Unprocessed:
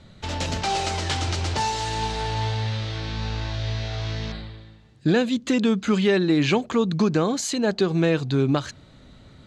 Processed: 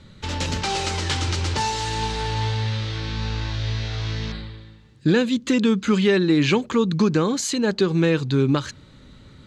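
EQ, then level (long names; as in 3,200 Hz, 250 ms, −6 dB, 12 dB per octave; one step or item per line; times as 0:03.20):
parametric band 690 Hz −14.5 dB 0.23 octaves
+2.0 dB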